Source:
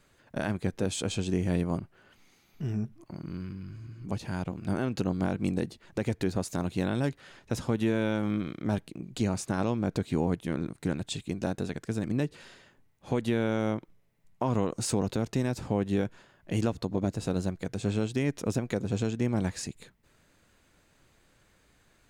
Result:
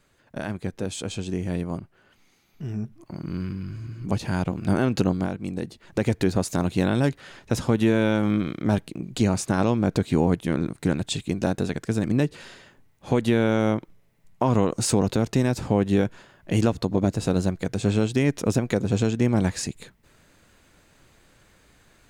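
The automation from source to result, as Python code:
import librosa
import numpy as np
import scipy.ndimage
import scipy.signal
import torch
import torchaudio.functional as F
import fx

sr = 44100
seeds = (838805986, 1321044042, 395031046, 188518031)

y = fx.gain(x, sr, db=fx.line((2.66, 0.0), (3.41, 8.0), (5.05, 8.0), (5.43, -3.0), (6.0, 7.0)))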